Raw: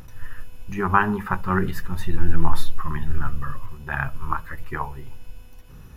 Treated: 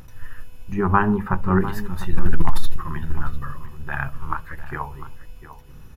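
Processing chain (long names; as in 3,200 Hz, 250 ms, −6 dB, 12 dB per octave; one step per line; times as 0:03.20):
0:00.72–0:01.61: tilt shelving filter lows +6 dB, about 1,200 Hz
0:02.13–0:02.76: leveller curve on the samples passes 2
slap from a distant wall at 120 metres, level −13 dB
0:04.14–0:04.72: highs frequency-modulated by the lows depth 0.31 ms
level −1 dB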